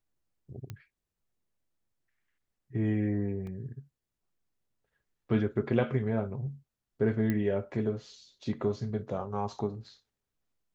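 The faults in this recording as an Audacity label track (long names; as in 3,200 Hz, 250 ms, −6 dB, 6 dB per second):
0.700000	0.700000	click −26 dBFS
3.470000	3.470000	drop-out 2.4 ms
7.300000	7.300000	click −18 dBFS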